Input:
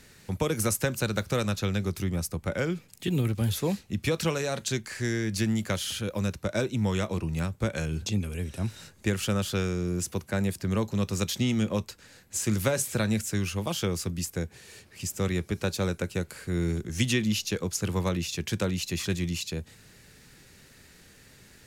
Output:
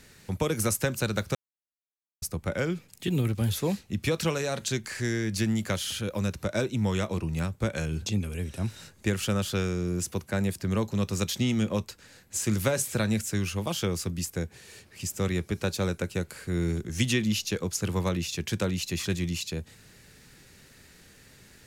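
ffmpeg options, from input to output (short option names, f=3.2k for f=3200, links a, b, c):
-filter_complex "[0:a]asplit=3[a][b][c];[a]afade=t=out:st=3.96:d=0.02[d];[b]acompressor=mode=upward:threshold=-31dB:ratio=2.5:attack=3.2:release=140:knee=2.83:detection=peak,afade=t=in:st=3.96:d=0.02,afade=t=out:st=6.54:d=0.02[e];[c]afade=t=in:st=6.54:d=0.02[f];[d][e][f]amix=inputs=3:normalize=0,asplit=3[g][h][i];[g]atrim=end=1.35,asetpts=PTS-STARTPTS,afade=t=out:st=1.346:d=0.004:c=hsin[j];[h]atrim=start=1.35:end=2.22,asetpts=PTS-STARTPTS,volume=0[k];[i]atrim=start=2.22,asetpts=PTS-STARTPTS,afade=t=in:d=0.004:c=hsin[l];[j][k][l]concat=n=3:v=0:a=1"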